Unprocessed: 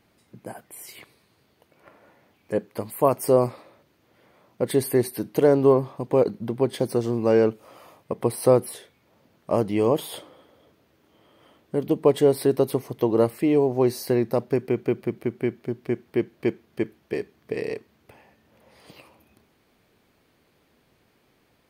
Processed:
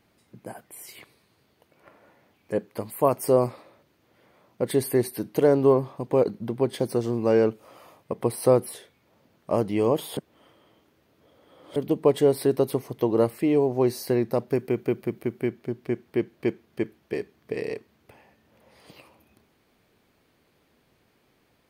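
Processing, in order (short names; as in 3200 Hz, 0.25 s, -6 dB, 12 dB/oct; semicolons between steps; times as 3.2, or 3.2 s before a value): 10.17–11.76 reverse; 14.48–15.49 high shelf 11000 Hz +9 dB; gain -1.5 dB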